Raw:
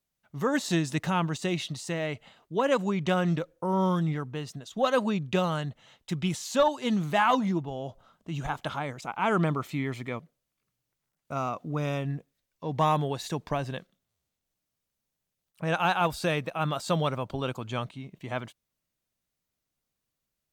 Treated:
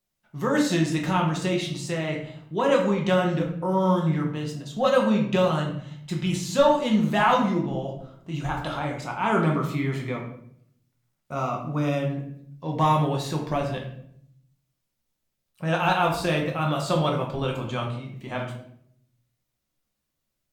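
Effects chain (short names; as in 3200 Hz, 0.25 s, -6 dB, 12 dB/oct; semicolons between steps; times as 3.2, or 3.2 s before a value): shoebox room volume 130 m³, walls mixed, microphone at 0.96 m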